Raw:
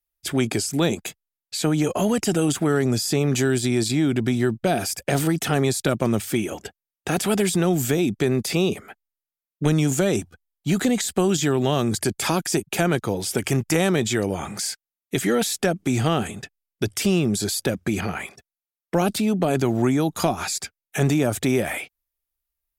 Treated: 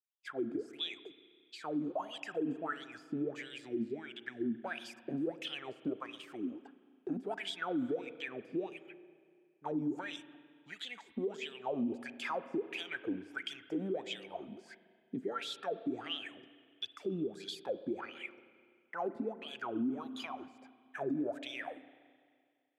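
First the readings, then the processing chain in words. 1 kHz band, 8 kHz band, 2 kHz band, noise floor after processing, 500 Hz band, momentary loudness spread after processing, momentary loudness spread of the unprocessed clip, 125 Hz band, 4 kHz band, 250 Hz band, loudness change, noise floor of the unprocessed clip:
-14.5 dB, -33.5 dB, -14.5 dB, -71 dBFS, -16.5 dB, 12 LU, 9 LU, -28.5 dB, -13.5 dB, -16.5 dB, -17.0 dB, under -85 dBFS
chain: wah 1.5 Hz 240–3400 Hz, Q 13; spring tank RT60 2.1 s, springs 31/42 ms, chirp 75 ms, DRR 14.5 dB; limiter -28.5 dBFS, peak gain reduction 9.5 dB; gain +1 dB

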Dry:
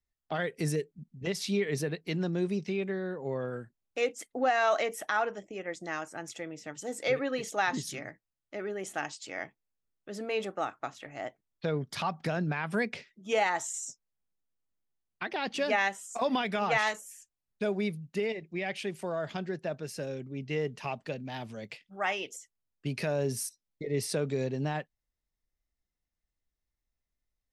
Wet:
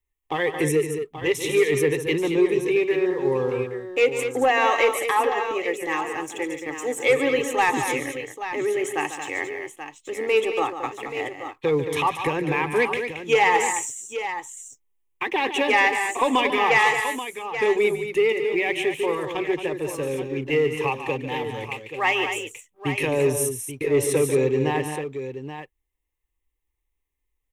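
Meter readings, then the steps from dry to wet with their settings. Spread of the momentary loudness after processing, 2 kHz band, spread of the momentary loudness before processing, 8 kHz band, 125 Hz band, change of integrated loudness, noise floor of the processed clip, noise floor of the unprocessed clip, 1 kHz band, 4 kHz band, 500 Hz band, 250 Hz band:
11 LU, +10.5 dB, 13 LU, +9.0 dB, +4.0 dB, +10.0 dB, -77 dBFS, under -85 dBFS, +10.0 dB, +9.0 dB, +11.0 dB, +8.0 dB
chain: fixed phaser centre 970 Hz, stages 8; sample leveller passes 1; tapped delay 0.145/0.224/0.831 s -10.5/-8.5/-10.5 dB; gain +9 dB

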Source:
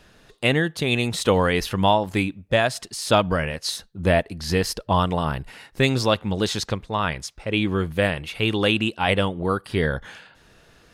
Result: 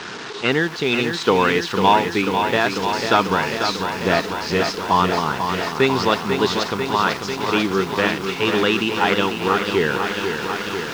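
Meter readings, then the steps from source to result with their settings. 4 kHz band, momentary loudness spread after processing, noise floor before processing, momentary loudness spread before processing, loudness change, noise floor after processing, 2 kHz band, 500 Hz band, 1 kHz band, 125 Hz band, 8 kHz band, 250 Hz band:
+3.5 dB, 5 LU, -55 dBFS, 7 LU, +3.5 dB, -31 dBFS, +5.0 dB, +3.0 dB, +6.5 dB, -3.5 dB, 0.0 dB, +2.5 dB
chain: delta modulation 64 kbps, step -27.5 dBFS; speaker cabinet 190–5900 Hz, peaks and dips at 410 Hz +6 dB, 580 Hz -9 dB, 950 Hz +5 dB, 1400 Hz +5 dB; lo-fi delay 0.494 s, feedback 80%, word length 7-bit, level -6.5 dB; gain +2 dB

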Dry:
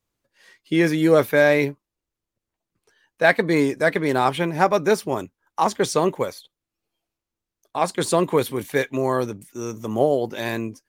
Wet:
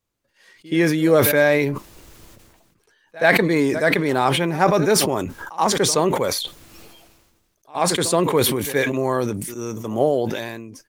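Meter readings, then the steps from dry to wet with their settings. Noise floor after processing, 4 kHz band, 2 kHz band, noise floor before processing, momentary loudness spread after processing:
-67 dBFS, +7.5 dB, +1.5 dB, under -85 dBFS, 13 LU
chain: ending faded out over 0.83 s; pre-echo 76 ms -21.5 dB; sustainer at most 38 dB/s

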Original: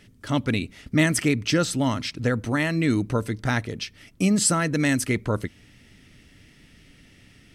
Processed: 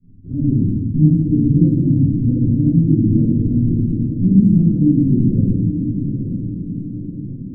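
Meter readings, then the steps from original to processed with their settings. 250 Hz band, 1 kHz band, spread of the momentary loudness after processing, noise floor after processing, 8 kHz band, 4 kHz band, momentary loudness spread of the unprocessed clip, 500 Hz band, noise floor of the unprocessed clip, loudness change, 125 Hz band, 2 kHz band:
+10.5 dB, under -35 dB, 12 LU, -31 dBFS, under -40 dB, under -40 dB, 8 LU, -2.5 dB, -55 dBFS, +8.0 dB, +13.0 dB, under -40 dB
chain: bin magnitudes rounded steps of 15 dB; in parallel at -11 dB: Schmitt trigger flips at -34.5 dBFS; on the sum: inverse Chebyshev low-pass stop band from 790 Hz, stop band 50 dB; on a send: diffused feedback echo 0.907 s, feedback 53%, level -8 dB; on the sum: rotary speaker horn 6.3 Hz; shoebox room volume 750 m³, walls mixed, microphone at 8.5 m; gain -6 dB

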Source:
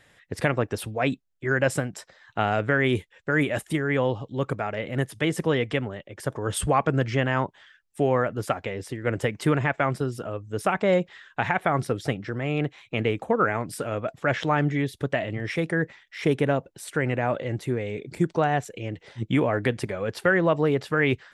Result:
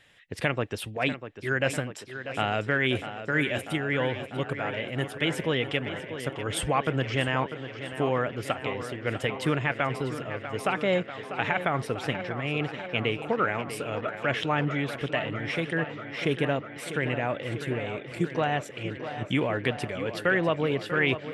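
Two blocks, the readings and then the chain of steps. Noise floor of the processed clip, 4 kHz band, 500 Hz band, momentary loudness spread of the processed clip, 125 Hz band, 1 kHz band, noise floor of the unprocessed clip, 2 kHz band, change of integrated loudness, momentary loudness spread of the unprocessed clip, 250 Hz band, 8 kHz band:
-43 dBFS, +3.5 dB, -3.5 dB, 8 LU, -4.0 dB, -3.0 dB, -64 dBFS, -0.5 dB, -3.0 dB, 8 LU, -4.0 dB, -4.0 dB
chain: bell 2900 Hz +8.5 dB 0.93 oct; on a send: tape echo 0.645 s, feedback 81%, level -10 dB, low-pass 4800 Hz; on the sum: gain -4.5 dB

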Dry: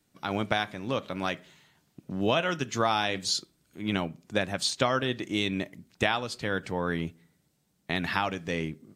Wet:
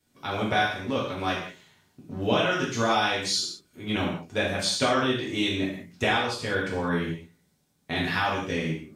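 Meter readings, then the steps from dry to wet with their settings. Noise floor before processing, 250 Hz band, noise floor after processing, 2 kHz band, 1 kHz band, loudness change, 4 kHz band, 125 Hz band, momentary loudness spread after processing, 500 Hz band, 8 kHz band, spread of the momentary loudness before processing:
-72 dBFS, +3.0 dB, -69 dBFS, +4.0 dB, +3.0 dB, +3.0 dB, +3.0 dB, +2.5 dB, 9 LU, +2.5 dB, +3.0 dB, 8 LU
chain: non-linear reverb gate 0.23 s falling, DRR -6.5 dB; gain -4.5 dB

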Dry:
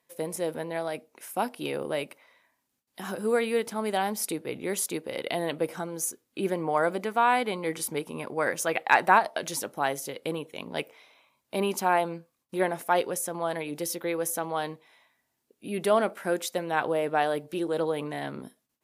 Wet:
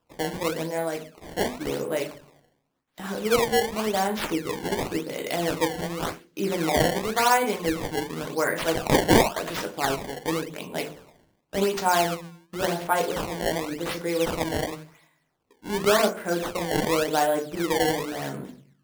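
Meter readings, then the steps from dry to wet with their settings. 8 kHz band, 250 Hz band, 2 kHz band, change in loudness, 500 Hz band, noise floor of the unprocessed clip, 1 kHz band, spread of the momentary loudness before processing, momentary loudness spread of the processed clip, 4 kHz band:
+1.5 dB, +5.0 dB, +1.5 dB, +3.0 dB, +3.0 dB, -79 dBFS, +1.0 dB, 11 LU, 12 LU, +7.5 dB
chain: shoebox room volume 38 m³, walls mixed, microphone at 0.49 m; decimation with a swept rate 20×, swing 160% 0.91 Hz

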